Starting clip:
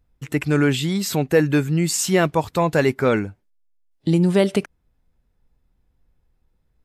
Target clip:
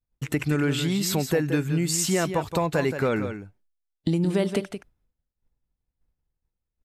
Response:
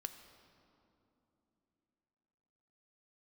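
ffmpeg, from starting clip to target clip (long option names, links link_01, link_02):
-filter_complex "[0:a]agate=range=-33dB:threshold=-50dB:ratio=3:detection=peak,acompressor=threshold=-26dB:ratio=3,asplit=2[link_01][link_02];[link_02]aecho=0:1:173:0.355[link_03];[link_01][link_03]amix=inputs=2:normalize=0,volume=2.5dB"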